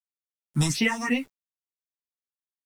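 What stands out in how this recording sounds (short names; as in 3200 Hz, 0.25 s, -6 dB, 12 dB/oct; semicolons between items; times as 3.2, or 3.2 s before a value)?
phasing stages 4, 2.8 Hz, lowest notch 340–1300 Hz; a quantiser's noise floor 10-bit, dither none; a shimmering, thickened sound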